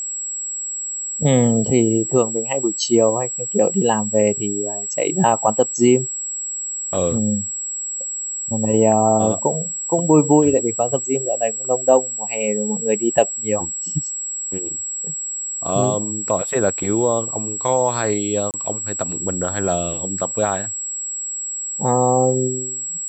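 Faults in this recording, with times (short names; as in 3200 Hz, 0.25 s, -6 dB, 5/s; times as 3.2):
tone 7700 Hz -24 dBFS
18.51–18.54 gap 28 ms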